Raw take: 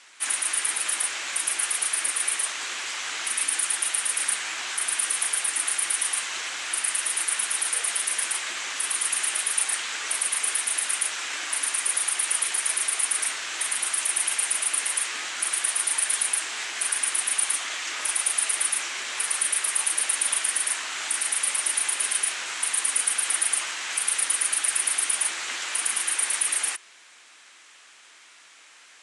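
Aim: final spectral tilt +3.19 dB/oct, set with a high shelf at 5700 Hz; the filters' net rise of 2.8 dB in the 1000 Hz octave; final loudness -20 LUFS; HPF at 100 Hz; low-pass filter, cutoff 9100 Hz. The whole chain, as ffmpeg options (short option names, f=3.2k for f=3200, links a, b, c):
-af "highpass=100,lowpass=9.1k,equalizer=f=1k:t=o:g=4,highshelf=f=5.7k:g=-8.5,volume=9.5dB"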